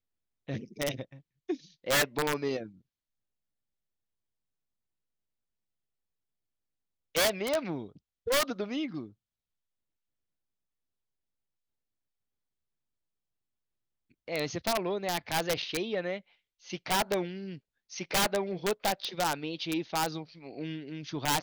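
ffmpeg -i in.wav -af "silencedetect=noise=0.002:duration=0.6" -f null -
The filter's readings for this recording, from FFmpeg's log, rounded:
silence_start: 2.79
silence_end: 7.15 | silence_duration: 4.35
silence_start: 9.13
silence_end: 14.12 | silence_duration: 4.99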